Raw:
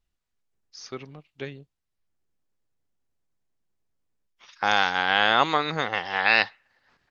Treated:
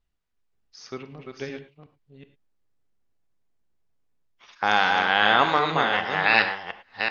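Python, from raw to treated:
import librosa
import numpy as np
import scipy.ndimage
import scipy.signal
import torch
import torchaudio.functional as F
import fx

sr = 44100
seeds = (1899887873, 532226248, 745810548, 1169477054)

y = fx.reverse_delay(x, sr, ms=373, wet_db=-5.0)
y = fx.lowpass(y, sr, hz=3900.0, slope=6)
y = fx.rev_gated(y, sr, seeds[0], gate_ms=130, shape='flat', drr_db=9.5)
y = y * 10.0 ** (1.0 / 20.0)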